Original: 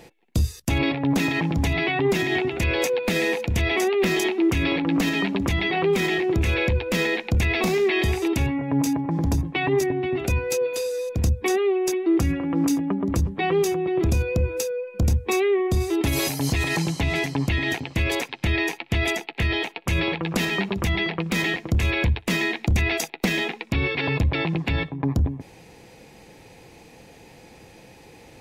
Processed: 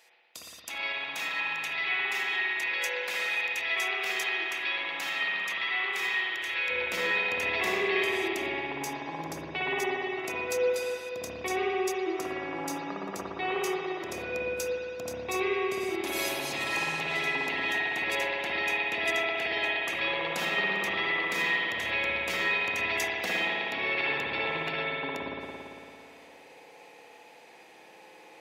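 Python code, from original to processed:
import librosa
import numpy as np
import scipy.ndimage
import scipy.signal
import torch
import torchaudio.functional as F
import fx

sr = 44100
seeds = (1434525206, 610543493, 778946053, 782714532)

y = fx.highpass(x, sr, hz=fx.steps((0.0, 1200.0), (6.7, 510.0)), slope=12)
y = fx.rev_spring(y, sr, rt60_s=2.7, pass_ms=(56,), chirp_ms=65, drr_db=-5.5)
y = y * librosa.db_to_amplitude(-7.5)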